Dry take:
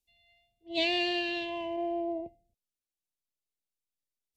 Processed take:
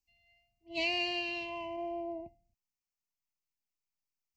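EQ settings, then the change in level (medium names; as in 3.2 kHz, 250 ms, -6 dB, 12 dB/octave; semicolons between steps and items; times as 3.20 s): static phaser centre 2.4 kHz, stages 8; 0.0 dB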